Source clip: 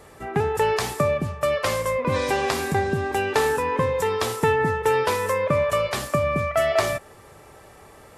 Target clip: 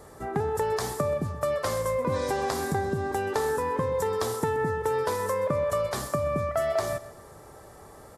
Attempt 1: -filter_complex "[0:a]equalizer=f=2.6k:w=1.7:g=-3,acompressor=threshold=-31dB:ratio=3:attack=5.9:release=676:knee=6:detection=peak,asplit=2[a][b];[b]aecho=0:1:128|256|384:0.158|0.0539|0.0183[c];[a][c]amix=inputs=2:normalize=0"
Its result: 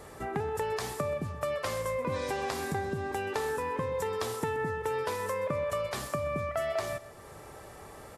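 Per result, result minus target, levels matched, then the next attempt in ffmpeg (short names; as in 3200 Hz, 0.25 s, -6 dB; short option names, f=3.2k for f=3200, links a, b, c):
compressor: peak gain reduction +6 dB; 2000 Hz band +3.0 dB
-filter_complex "[0:a]equalizer=f=2.6k:w=1.7:g=-3,acompressor=threshold=-23dB:ratio=3:attack=5.9:release=676:knee=6:detection=peak,asplit=2[a][b];[b]aecho=0:1:128|256|384:0.158|0.0539|0.0183[c];[a][c]amix=inputs=2:normalize=0"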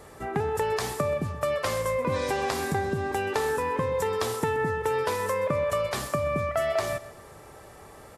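2000 Hz band +3.0 dB
-filter_complex "[0:a]equalizer=f=2.6k:w=1.7:g=-12,acompressor=threshold=-23dB:ratio=3:attack=5.9:release=676:knee=6:detection=peak,asplit=2[a][b];[b]aecho=0:1:128|256|384:0.158|0.0539|0.0183[c];[a][c]amix=inputs=2:normalize=0"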